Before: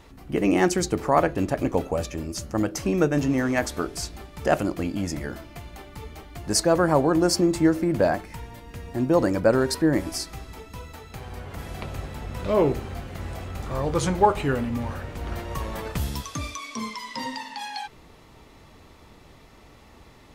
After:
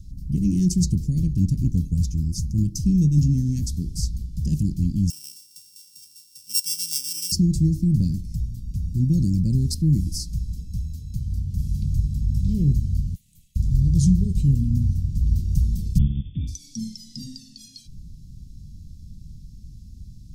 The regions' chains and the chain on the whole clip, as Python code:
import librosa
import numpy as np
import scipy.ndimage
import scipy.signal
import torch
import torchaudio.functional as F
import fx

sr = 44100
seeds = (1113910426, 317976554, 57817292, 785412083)

y = fx.chain(x, sr, fx.sample_sort(block=16),
    fx.highpass(hz=1400.0, slope=12),
    fx.high_shelf(hz=4700.0, db=6.5), at=(5.1, 7.32))
y = fx.chain(y, sr, fx.highpass(hz=670.0, slope=24),
    fx.fixed_phaser(hz=1400.0, stages=6),
    fx.tube_stage(drive_db=36.0, bias=0.5), at=(13.15, 13.56))
y = fx.spec_clip(y, sr, under_db=15, at=(15.97, 16.47), fade=0.02)
y = fx.brickwall_lowpass(y, sr, high_hz=3600.0, at=(15.97, 16.47), fade=0.02)
y = scipy.signal.sosfilt(scipy.signal.ellip(3, 1.0, 80, [180.0, 5200.0], 'bandstop', fs=sr, output='sos'), y)
y = fx.tilt_eq(y, sr, slope=-2.0)
y = F.gain(torch.from_numpy(y), 6.0).numpy()